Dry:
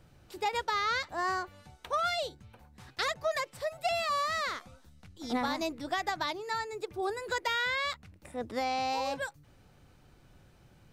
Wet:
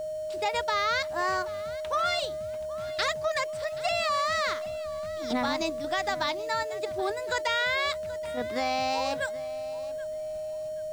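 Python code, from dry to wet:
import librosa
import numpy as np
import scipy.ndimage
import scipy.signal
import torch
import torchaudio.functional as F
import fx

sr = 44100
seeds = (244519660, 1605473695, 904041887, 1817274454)

p1 = scipy.signal.sosfilt(scipy.signal.butter(6, 9800.0, 'lowpass', fs=sr, output='sos'), x)
p2 = fx.peak_eq(p1, sr, hz=530.0, db=-4.0, octaves=1.4)
p3 = fx.level_steps(p2, sr, step_db=19)
p4 = p2 + F.gain(torch.from_numpy(p3), 1.5).numpy()
p5 = p4 + 10.0 ** (-31.0 / 20.0) * np.sin(2.0 * np.pi * 620.0 * np.arange(len(p4)) / sr)
p6 = np.where(np.abs(p5) >= 10.0 ** (-45.0 / 20.0), p5, 0.0)
y = fx.echo_feedback(p6, sr, ms=778, feedback_pct=26, wet_db=-17.5)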